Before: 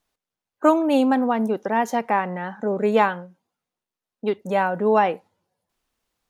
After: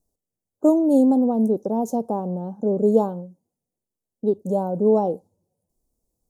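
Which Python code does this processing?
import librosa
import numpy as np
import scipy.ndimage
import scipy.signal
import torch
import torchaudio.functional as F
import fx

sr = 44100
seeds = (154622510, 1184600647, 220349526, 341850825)

y = scipy.signal.sosfilt(scipy.signal.cheby1(2, 1.0, [520.0, 7600.0], 'bandstop', fs=sr, output='sos'), x)
y = fx.low_shelf(y, sr, hz=180.0, db=8.0)
y = y * librosa.db_to_amplitude(1.0)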